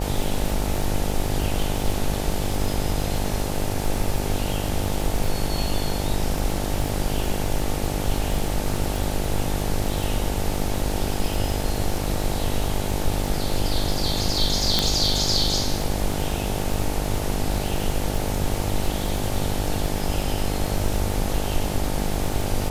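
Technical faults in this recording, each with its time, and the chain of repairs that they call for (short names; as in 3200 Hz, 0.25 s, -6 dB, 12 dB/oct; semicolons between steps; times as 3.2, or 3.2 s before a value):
buzz 50 Hz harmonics 18 -28 dBFS
crackle 53/s -26 dBFS
14.79 pop -3 dBFS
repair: de-click; de-hum 50 Hz, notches 18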